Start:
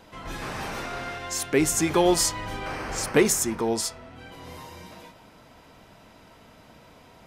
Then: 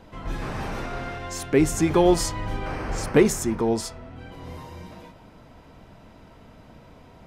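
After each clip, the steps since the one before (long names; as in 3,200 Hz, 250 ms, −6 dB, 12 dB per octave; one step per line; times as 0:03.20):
spectral tilt −2 dB per octave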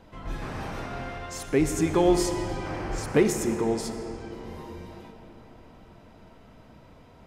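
comb and all-pass reverb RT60 4.3 s, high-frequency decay 0.65×, pre-delay 25 ms, DRR 7 dB
level −4 dB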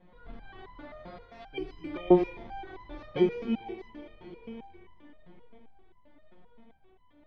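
samples in bit-reversed order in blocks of 16 samples
low-pass filter 3,000 Hz 24 dB per octave
step-sequenced resonator 7.6 Hz 180–1,000 Hz
level +7 dB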